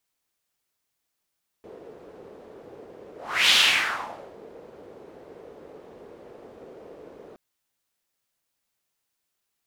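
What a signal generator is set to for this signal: whoosh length 5.72 s, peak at 1.87 s, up 0.38 s, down 0.91 s, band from 450 Hz, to 3.3 kHz, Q 3, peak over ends 28.5 dB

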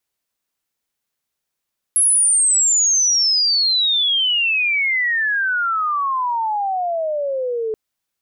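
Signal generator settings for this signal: sweep logarithmic 11 kHz -> 430 Hz -11.5 dBFS -> -19.5 dBFS 5.78 s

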